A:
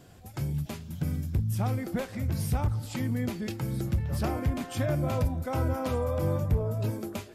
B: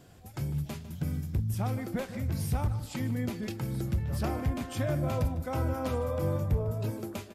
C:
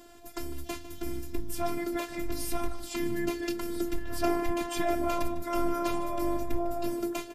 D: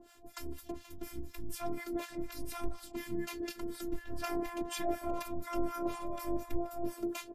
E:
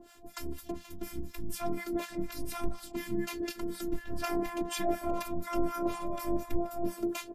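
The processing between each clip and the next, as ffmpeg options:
ffmpeg -i in.wav -filter_complex "[0:a]asplit=2[link_01][link_02];[link_02]adelay=151.6,volume=-14dB,highshelf=frequency=4000:gain=-3.41[link_03];[link_01][link_03]amix=inputs=2:normalize=0,volume=-2dB" out.wav
ffmpeg -i in.wav -af "highpass=76,afftfilt=real='hypot(re,im)*cos(PI*b)':imag='0':win_size=512:overlap=0.75,volume=8.5dB" out.wav
ffmpeg -i in.wav -filter_complex "[0:a]acrossover=split=840[link_01][link_02];[link_01]aeval=exprs='val(0)*(1-1/2+1/2*cos(2*PI*4.1*n/s))':channel_layout=same[link_03];[link_02]aeval=exprs='val(0)*(1-1/2-1/2*cos(2*PI*4.1*n/s))':channel_layout=same[link_04];[link_03][link_04]amix=inputs=2:normalize=0,volume=-2dB" out.wav
ffmpeg -i in.wav -af "equalizer=frequency=190:width_type=o:width=0.2:gain=12.5,volume=3.5dB" out.wav

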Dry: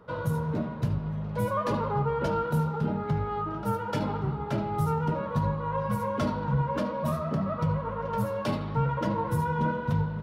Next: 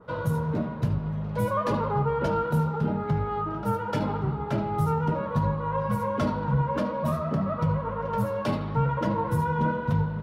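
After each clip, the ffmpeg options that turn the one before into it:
ffmpeg -i in.wav -af "adynamicequalizer=threshold=0.00355:dfrequency=2700:dqfactor=0.7:tfrequency=2700:tqfactor=0.7:attack=5:release=100:ratio=0.375:range=1.5:mode=cutabove:tftype=highshelf,volume=2dB" out.wav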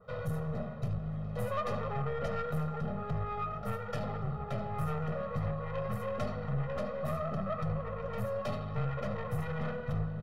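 ffmpeg -i in.wav -af "aeval=exprs='(tanh(17.8*val(0)+0.5)-tanh(0.5))/17.8':channel_layout=same,aecho=1:1:1.6:0.91,volume=-7dB" out.wav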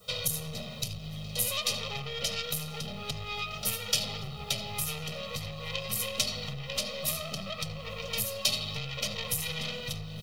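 ffmpeg -i in.wav -af "acompressor=threshold=-35dB:ratio=6,aexciter=amount=14.8:drive=9.2:freq=2600" out.wav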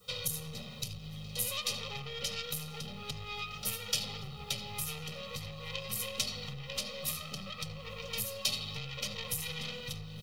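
ffmpeg -i in.wav -af "asuperstop=centerf=650:order=4:qfactor=5.5,volume=-4.5dB" out.wav

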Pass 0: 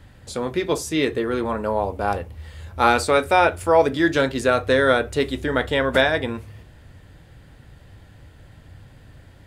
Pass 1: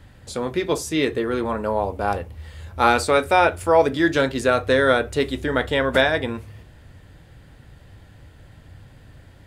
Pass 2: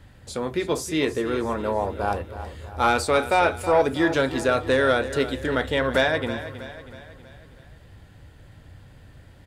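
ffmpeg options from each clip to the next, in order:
ffmpeg -i in.wav -af anull out.wav
ffmpeg -i in.wav -af "asoftclip=type=tanh:threshold=-7dB,aecho=1:1:321|642|963|1284|1605:0.224|0.114|0.0582|0.0297|0.0151,volume=-2dB" out.wav

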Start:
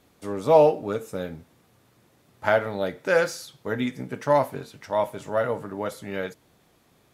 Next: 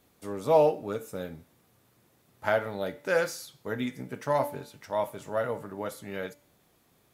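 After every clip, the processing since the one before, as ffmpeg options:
ffmpeg -i in.wav -af "highshelf=frequency=12000:gain=11.5,bandreject=frequency=289.9:width_type=h:width=4,bandreject=frequency=579.8:width_type=h:width=4,bandreject=frequency=869.7:width_type=h:width=4,bandreject=frequency=1159.6:width_type=h:width=4,bandreject=frequency=1449.5:width_type=h:width=4,bandreject=frequency=1739.4:width_type=h:width=4,bandreject=frequency=2029.3:width_type=h:width=4,bandreject=frequency=2319.2:width_type=h:width=4,bandreject=frequency=2609.1:width_type=h:width=4,bandreject=frequency=2899:width_type=h:width=4,bandreject=frequency=3188.9:width_type=h:width=4,bandreject=frequency=3478.8:width_type=h:width=4,bandreject=frequency=3768.7:width_type=h:width=4,bandreject=frequency=4058.6:width_type=h:width=4,bandreject=frequency=4348.5:width_type=h:width=4,bandreject=frequency=4638.4:width_type=h:width=4,bandreject=frequency=4928.3:width_type=h:width=4,bandreject=frequency=5218.2:width_type=h:width=4,bandreject=frequency=5508.1:width_type=h:width=4,bandreject=frequency=5798:width_type=h:width=4,bandreject=frequency=6087.9:width_type=h:width=4,bandreject=frequency=6377.8:width_type=h:width=4,bandreject=frequency=6667.7:width_type=h:width=4,bandreject=frequency=6957.6:width_type=h:width=4,bandreject=frequency=7247.5:width_type=h:width=4,bandreject=frequency=7537.4:width_type=h:width=4,bandreject=frequency=7827.3:width_type=h:width=4,bandreject=frequency=8117.2:width_type=h:width=4,bandreject=frequency=8407.1:width_type=h:width=4,bandreject=frequency=8697:width_type=h:width=4,bandreject=frequency=8986.9:width_type=h:width=4,bandreject=frequency=9276.8:width_type=h:width=4,volume=-5dB" out.wav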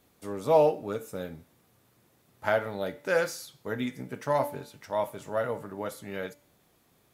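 ffmpeg -i in.wav -af anull out.wav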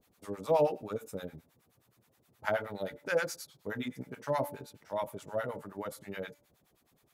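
ffmpeg -i in.wav -filter_complex "[0:a]acrossover=split=730[link_01][link_02];[link_01]aeval=exprs='val(0)*(1-1/2+1/2*cos(2*PI*9.5*n/s))':channel_layout=same[link_03];[link_02]aeval=exprs='val(0)*(1-1/2-1/2*cos(2*PI*9.5*n/s))':channel_layout=same[link_04];[link_03][link_04]amix=inputs=2:normalize=0" out.wav

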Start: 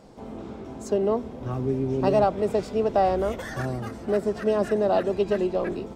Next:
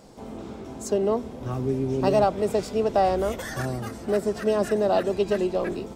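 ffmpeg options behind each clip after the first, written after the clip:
ffmpeg -i in.wav -af "highshelf=frequency=4900:gain=10" out.wav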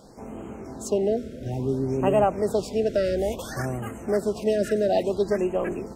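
ffmpeg -i in.wav -af "afftfilt=real='re*(1-between(b*sr/1024,920*pow(4600/920,0.5+0.5*sin(2*PI*0.58*pts/sr))/1.41,920*pow(4600/920,0.5+0.5*sin(2*PI*0.58*pts/sr))*1.41))':imag='im*(1-between(b*sr/1024,920*pow(4600/920,0.5+0.5*sin(2*PI*0.58*pts/sr))/1.41,920*pow(4600/920,0.5+0.5*sin(2*PI*0.58*pts/sr))*1.41))':win_size=1024:overlap=0.75" out.wav

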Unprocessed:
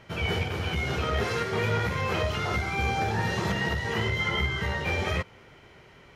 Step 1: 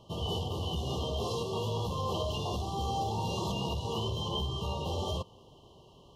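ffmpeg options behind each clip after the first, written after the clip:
ffmpeg -i in.wav -filter_complex "[0:a]afftfilt=real='re*(1-between(b*sr/4096,1200,2700))':imag='im*(1-between(b*sr/4096,1200,2700))':win_size=4096:overlap=0.75,acrossover=split=840[link_01][link_02];[link_01]alimiter=level_in=1.5dB:limit=-24dB:level=0:latency=1:release=12,volume=-1.5dB[link_03];[link_03][link_02]amix=inputs=2:normalize=0,volume=-2.5dB" out.wav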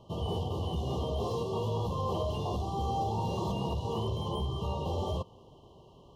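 ffmpeg -i in.wav -filter_complex "[0:a]acrossover=split=1500[link_01][link_02];[link_01]acontrast=63[link_03];[link_02]asoftclip=type=tanh:threshold=-39dB[link_04];[link_03][link_04]amix=inputs=2:normalize=0,volume=-5dB" out.wav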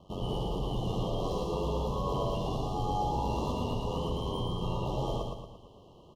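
ffmpeg -i in.wav -filter_complex "[0:a]aeval=exprs='val(0)*sin(2*PI*46*n/s)':channel_layout=same,asplit=2[link_01][link_02];[link_02]aecho=0:1:114|228|342|456|570|684:0.708|0.319|0.143|0.0645|0.029|0.0131[link_03];[link_01][link_03]amix=inputs=2:normalize=0,volume=1.5dB" out.wav

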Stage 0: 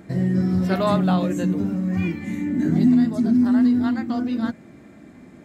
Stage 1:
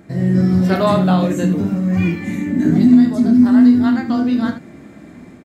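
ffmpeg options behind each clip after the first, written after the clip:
ffmpeg -i in.wav -filter_complex "[0:a]dynaudnorm=framelen=140:gausssize=3:maxgain=6dB,asplit=2[link_01][link_02];[link_02]aecho=0:1:29|76:0.376|0.282[link_03];[link_01][link_03]amix=inputs=2:normalize=0" out.wav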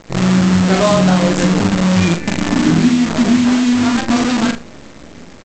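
ffmpeg -i in.wav -filter_complex "[0:a]aresample=16000,acrusher=bits=4:dc=4:mix=0:aa=0.000001,aresample=44100,acompressor=threshold=-13dB:ratio=3,asplit=2[link_01][link_02];[link_02]adelay=42,volume=-7dB[link_03];[link_01][link_03]amix=inputs=2:normalize=0,volume=3.5dB" out.wav

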